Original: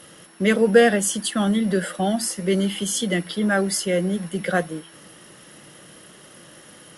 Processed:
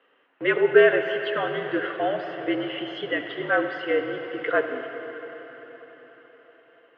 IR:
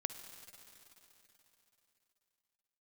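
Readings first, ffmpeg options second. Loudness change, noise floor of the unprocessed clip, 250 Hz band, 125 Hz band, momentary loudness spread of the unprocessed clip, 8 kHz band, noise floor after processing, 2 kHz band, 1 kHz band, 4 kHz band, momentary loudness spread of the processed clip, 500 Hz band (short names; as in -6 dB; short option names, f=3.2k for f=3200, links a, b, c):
-3.0 dB, -47 dBFS, -9.0 dB, -15.5 dB, 9 LU, under -40 dB, -63 dBFS, +1.0 dB, -1.5 dB, -6.5 dB, 18 LU, -0.5 dB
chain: -filter_complex "[0:a]agate=range=-13dB:threshold=-38dB:ratio=16:detection=peak[a];[1:a]atrim=start_sample=2205,asetrate=32634,aresample=44100[b];[a][b]afir=irnorm=-1:irlink=0,highpass=f=410:t=q:w=0.5412,highpass=f=410:t=q:w=1.307,lowpass=f=2.9k:t=q:w=0.5176,lowpass=f=2.9k:t=q:w=0.7071,lowpass=f=2.9k:t=q:w=1.932,afreqshift=-56"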